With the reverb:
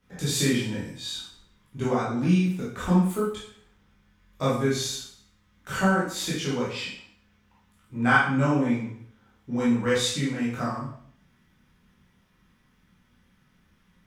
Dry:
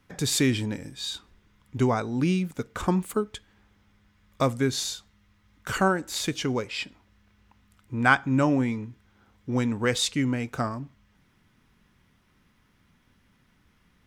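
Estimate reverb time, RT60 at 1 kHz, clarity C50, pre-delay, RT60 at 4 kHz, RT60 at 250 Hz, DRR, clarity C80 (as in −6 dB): 0.60 s, 0.60 s, 1.0 dB, 7 ms, 0.55 s, 0.65 s, −8.5 dB, 6.5 dB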